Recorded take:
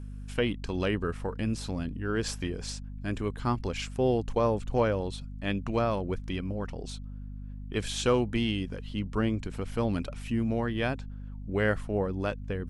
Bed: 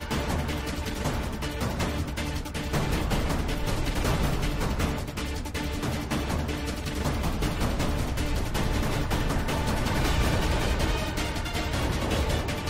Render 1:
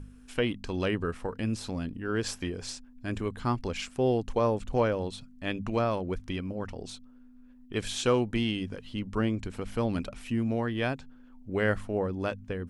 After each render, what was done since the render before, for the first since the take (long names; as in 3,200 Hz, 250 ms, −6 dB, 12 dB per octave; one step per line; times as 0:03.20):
hum removal 50 Hz, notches 4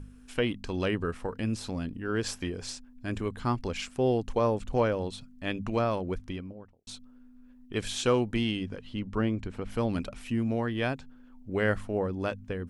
0:06.07–0:06.87: fade out and dull
0:08.57–0:09.69: low-pass filter 5,800 Hz → 2,500 Hz 6 dB per octave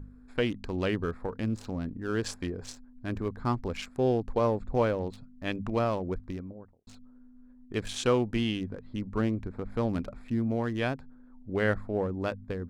adaptive Wiener filter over 15 samples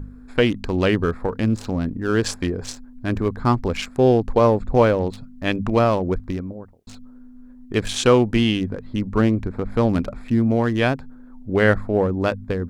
level +10.5 dB
brickwall limiter −3 dBFS, peak gain reduction 0.5 dB